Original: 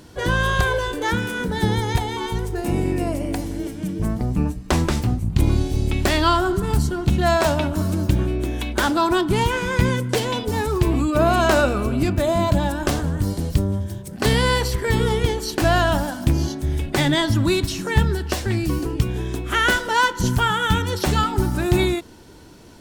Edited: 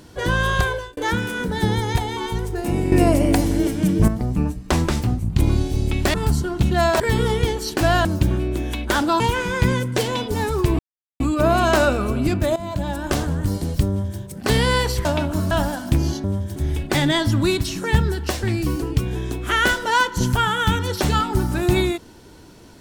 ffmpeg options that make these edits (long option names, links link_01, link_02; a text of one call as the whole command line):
ffmpeg -i in.wav -filter_complex "[0:a]asplit=14[link_01][link_02][link_03][link_04][link_05][link_06][link_07][link_08][link_09][link_10][link_11][link_12][link_13][link_14];[link_01]atrim=end=0.97,asetpts=PTS-STARTPTS,afade=type=out:start_time=0.61:duration=0.36[link_15];[link_02]atrim=start=0.97:end=2.922,asetpts=PTS-STARTPTS,afade=type=in:duration=0.004:curve=hsin[link_16];[link_03]atrim=start=2.918:end=4.082,asetpts=PTS-STARTPTS,volume=8dB[link_17];[link_04]atrim=start=4.078:end=6.142[link_18];[link_05]atrim=start=6.608:end=7.472[link_19];[link_06]atrim=start=14.808:end=15.862[link_20];[link_07]atrim=start=7.928:end=9.082[link_21];[link_08]atrim=start=9.368:end=10.96,asetpts=PTS-STARTPTS,afade=type=out:start_time=1.588:duration=0.004:curve=hsin,apad=pad_dur=0.41[link_22];[link_09]atrim=start=10.96:end=12.32,asetpts=PTS-STARTPTS,afade=type=in:duration=0.004:curve=hsin,afade=type=out:start_time=1.356:duration=0.004:curve=hsin:silence=0.188365[link_23];[link_10]atrim=start=12.32:end=14.812,asetpts=PTS-STARTPTS,afade=type=in:duration=0.61:silence=0.188365[link_24];[link_11]atrim=start=7.468:end=7.932[link_25];[link_12]atrim=start=15.858:end=16.592[link_26];[link_13]atrim=start=13.638:end=13.962[link_27];[link_14]atrim=start=16.588[link_28];[link_15][link_16]concat=n=2:v=0:a=1[link_29];[link_29][link_17]acrossfade=duration=0.004:curve1=hsin:curve2=hsin[link_30];[link_30][link_18]acrossfade=duration=0.004:curve1=hsin:curve2=hsin[link_31];[link_31][link_19]acrossfade=duration=0.004:curve1=hsin:curve2=hsin[link_32];[link_32][link_20]acrossfade=duration=0.004:curve1=hsin:curve2=hsin[link_33];[link_33][link_21]acrossfade=duration=0.004:curve1=hsin:curve2=hsin[link_34];[link_22][link_23][link_24]concat=n=3:v=0:a=1[link_35];[link_34][link_35]acrossfade=duration=0.004:curve1=hsin:curve2=hsin[link_36];[link_36][link_25]acrossfade=duration=0.004:curve1=hsin:curve2=hsin[link_37];[link_37][link_26]acrossfade=duration=0.004:curve1=hsin:curve2=hsin[link_38];[link_38][link_27]acrossfade=duration=0.004:curve1=hsin:curve2=hsin[link_39];[link_39][link_28]acrossfade=duration=0.004:curve1=hsin:curve2=hsin" out.wav